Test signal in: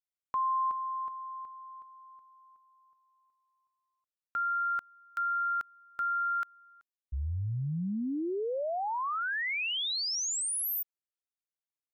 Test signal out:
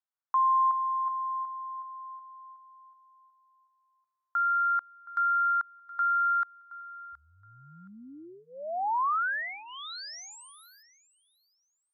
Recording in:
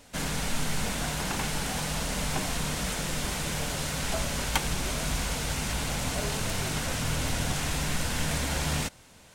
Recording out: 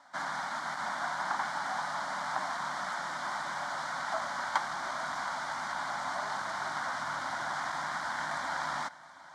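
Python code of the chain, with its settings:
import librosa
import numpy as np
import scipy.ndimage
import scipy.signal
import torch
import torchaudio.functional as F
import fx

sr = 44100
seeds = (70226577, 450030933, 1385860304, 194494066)

y = np.minimum(x, 2.0 * 10.0 ** (-24.5 / 20.0) - x)
y = fx.bandpass_edges(y, sr, low_hz=710.0, high_hz=4000.0)
y = fx.high_shelf(y, sr, hz=3000.0, db=-11.5)
y = fx.fixed_phaser(y, sr, hz=1100.0, stages=4)
y = fx.echo_feedback(y, sr, ms=721, feedback_pct=23, wet_db=-19.0)
y = y * librosa.db_to_amplitude(8.0)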